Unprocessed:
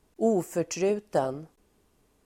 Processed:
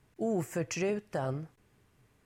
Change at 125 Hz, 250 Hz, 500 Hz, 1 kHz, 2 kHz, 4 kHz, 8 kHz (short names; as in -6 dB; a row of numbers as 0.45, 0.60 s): +1.0, -5.0, -7.0, -7.5, +0.5, -3.0, -4.5 dB